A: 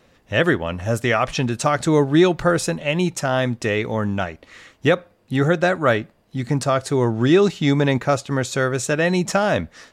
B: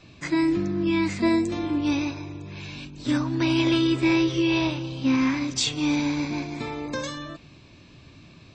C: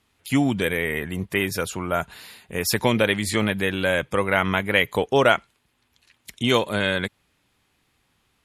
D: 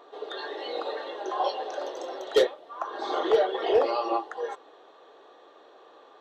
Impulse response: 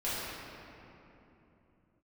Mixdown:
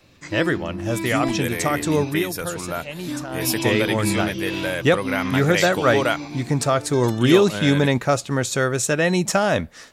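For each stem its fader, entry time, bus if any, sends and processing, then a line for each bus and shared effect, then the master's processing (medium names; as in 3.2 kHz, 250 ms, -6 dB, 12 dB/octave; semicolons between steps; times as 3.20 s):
2.05 s -4 dB -> 2.29 s -12.5 dB -> 3.45 s -12.5 dB -> 3.66 s -0.5 dB, 0.00 s, no send, none
-6.0 dB, 0.00 s, no send, none
-4.5 dB, 0.80 s, no send, none
-17.0 dB, 2.10 s, no send, none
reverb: none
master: treble shelf 7.4 kHz +9.5 dB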